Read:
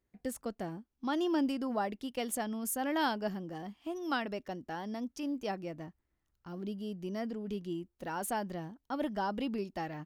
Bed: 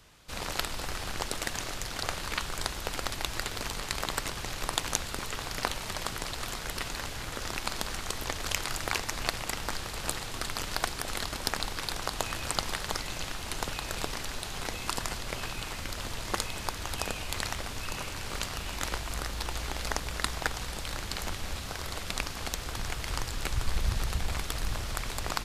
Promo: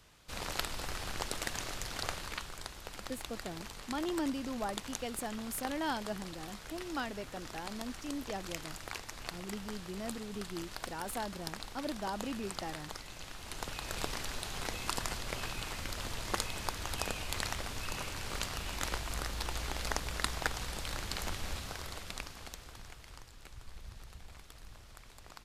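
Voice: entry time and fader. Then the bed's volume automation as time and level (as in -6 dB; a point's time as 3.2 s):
2.85 s, -4.0 dB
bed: 2.06 s -4 dB
2.62 s -11.5 dB
13.16 s -11.5 dB
14.05 s -3 dB
21.52 s -3 dB
23.3 s -20 dB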